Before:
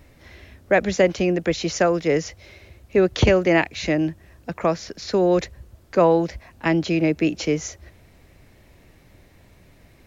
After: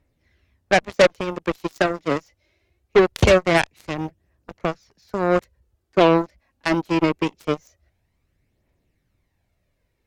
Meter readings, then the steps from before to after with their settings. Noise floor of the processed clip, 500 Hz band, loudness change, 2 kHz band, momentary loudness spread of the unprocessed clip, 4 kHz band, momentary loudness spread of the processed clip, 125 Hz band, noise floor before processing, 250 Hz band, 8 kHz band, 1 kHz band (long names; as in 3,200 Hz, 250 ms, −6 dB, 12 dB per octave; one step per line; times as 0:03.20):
−72 dBFS, 0.0 dB, 0.0 dB, +2.0 dB, 10 LU, +2.0 dB, 13 LU, −1.5 dB, −53 dBFS, −2.0 dB, can't be measured, +2.5 dB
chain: phase shifter 0.23 Hz, delay 3.7 ms, feedback 40%
harmonic generator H 2 −11 dB, 4 −25 dB, 5 −8 dB, 7 −7 dB, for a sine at −3 dBFS
level −3 dB